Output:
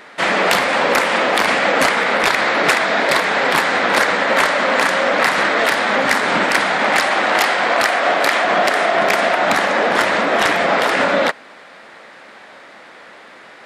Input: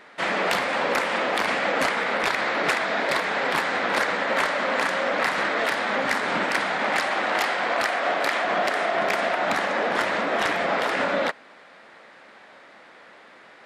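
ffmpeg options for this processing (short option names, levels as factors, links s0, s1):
-af "highshelf=f=6500:g=5,volume=2.51"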